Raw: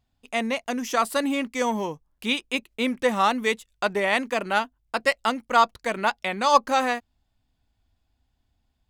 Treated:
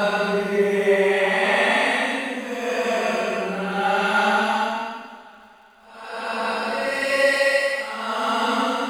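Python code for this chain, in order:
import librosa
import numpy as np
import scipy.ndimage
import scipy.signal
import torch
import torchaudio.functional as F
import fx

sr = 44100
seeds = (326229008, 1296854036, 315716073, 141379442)

y = fx.paulstretch(x, sr, seeds[0], factor=5.9, window_s=0.25, from_s=3.85)
y = fx.dmg_crackle(y, sr, seeds[1], per_s=170.0, level_db=-52.0)
y = fx.rev_double_slope(y, sr, seeds[2], early_s=0.45, late_s=4.1, knee_db=-22, drr_db=1.0)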